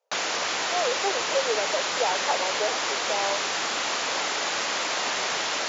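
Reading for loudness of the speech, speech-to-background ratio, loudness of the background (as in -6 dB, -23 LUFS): -30.5 LUFS, -5.0 dB, -25.5 LUFS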